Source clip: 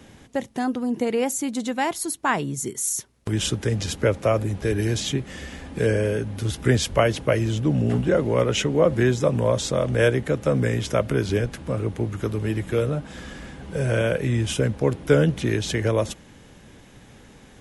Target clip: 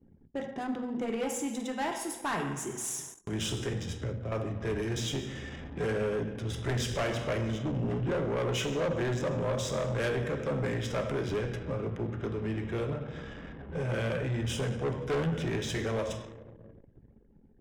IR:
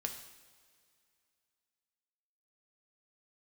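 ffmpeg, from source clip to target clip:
-filter_complex "[0:a]adynamicsmooth=sensitivity=8:basefreq=5100,asuperstop=centerf=4300:order=4:qfactor=7.6,asettb=1/sr,asplit=3[s0][s1][s2];[s0]atrim=end=3.734[s3];[s1]atrim=start=3.73:end=4.32,asetpts=PTS-STARTPTS,afade=t=in:d=0.004:c=qsin,afade=t=out:st=0.586:d=0.004:c=qsin,acrossover=split=240[s4][s5];[s5]acompressor=threshold=0.0126:ratio=3[s6];[s4][s6]amix=inputs=2:normalize=0[s7];[s2]atrim=start=4.316[s8];[s3][s7]acrossfade=d=0.004:c1=hsin:c2=qsin[s9];[s9][s8]acrossfade=d=0.004:c1=qsin:c2=hsin[s10];[1:a]atrim=start_sample=2205,asetrate=41454,aresample=44100[s11];[s10][s11]afir=irnorm=-1:irlink=0,asoftclip=type=tanh:threshold=0.0891,bandreject=f=50:t=h:w=6,bandreject=f=100:t=h:w=6,bandreject=f=150:t=h:w=6,bandreject=f=200:t=h:w=6,bandreject=f=250:t=h:w=6,anlmdn=0.158,volume=0.562"

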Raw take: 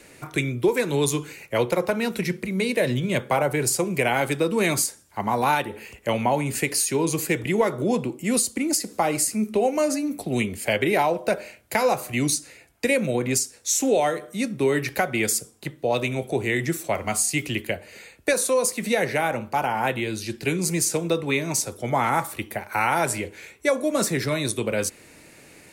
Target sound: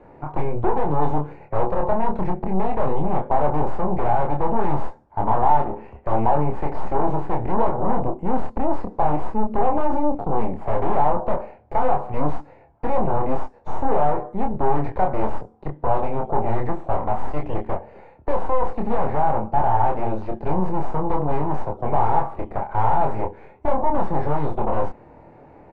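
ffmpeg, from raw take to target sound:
-filter_complex "[0:a]aeval=exprs='0.398*(cos(1*acos(clip(val(0)/0.398,-1,1)))-cos(1*PI/2))+0.1*(cos(8*acos(clip(val(0)/0.398,-1,1)))-cos(8*PI/2))':c=same,asoftclip=type=tanh:threshold=0.112,lowpass=f=860:t=q:w=3.8,lowshelf=f=110:g=8.5,asplit=2[s0][s1];[s1]adelay=27,volume=0.631[s2];[s0][s2]amix=inputs=2:normalize=0"

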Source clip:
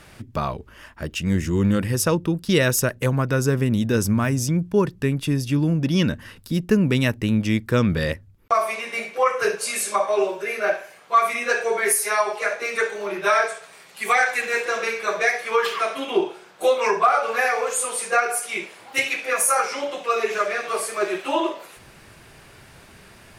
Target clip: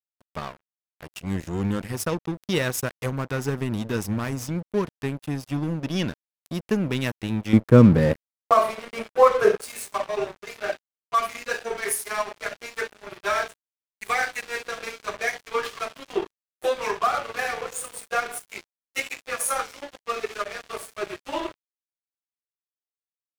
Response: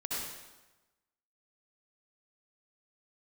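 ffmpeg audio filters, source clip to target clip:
-filter_complex "[0:a]asettb=1/sr,asplit=3[s0][s1][s2];[s0]atrim=end=7.534[s3];[s1]atrim=start=7.53:end=9.62,asetpts=PTS-STARTPTS,afade=t=in:d=0.004:c=qsin,afade=t=out:st=2.086:d=0.004:c=qsin,equalizer=f=125:t=o:w=1:g=10,equalizer=f=250:t=o:w=1:g=9,equalizer=f=500:t=o:w=1:g=7,equalizer=f=1000:t=o:w=1:g=6,equalizer=f=4000:t=o:w=1:g=-9[s4];[s2]atrim=start=9.616[s5];[s3][s4]acrossfade=d=0.004:c1=hsin:c2=qsin[s6];[s6][s5]acrossfade=d=0.004:c1=qsin:c2=hsin,aeval=exprs='sgn(val(0))*max(abs(val(0))-0.0447,0)':c=same,volume=0.668"

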